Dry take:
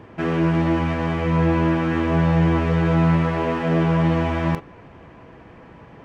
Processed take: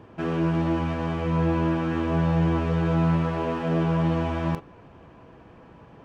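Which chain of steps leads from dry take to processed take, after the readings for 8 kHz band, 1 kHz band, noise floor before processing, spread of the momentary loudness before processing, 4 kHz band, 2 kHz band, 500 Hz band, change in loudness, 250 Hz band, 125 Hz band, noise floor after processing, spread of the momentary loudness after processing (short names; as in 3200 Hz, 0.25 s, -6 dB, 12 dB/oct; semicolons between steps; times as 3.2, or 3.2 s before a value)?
n/a, -4.5 dB, -45 dBFS, 5 LU, -5.0 dB, -7.5 dB, -4.5 dB, -4.5 dB, -4.5 dB, -4.5 dB, -50 dBFS, 5 LU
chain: bell 2000 Hz -7 dB 0.37 oct; gain -4.5 dB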